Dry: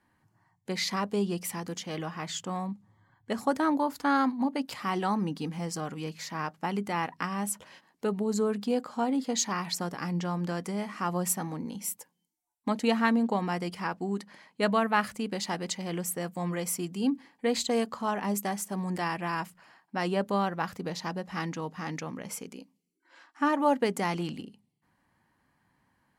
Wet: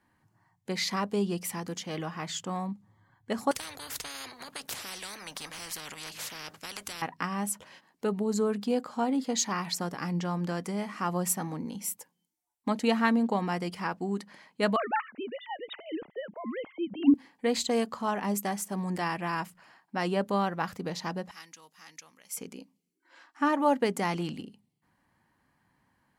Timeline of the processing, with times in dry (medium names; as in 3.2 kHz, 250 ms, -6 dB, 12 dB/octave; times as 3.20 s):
3.51–7.02 s: spectrum-flattening compressor 10:1
14.76–17.14 s: formants replaced by sine waves
21.31–22.37 s: pre-emphasis filter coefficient 0.97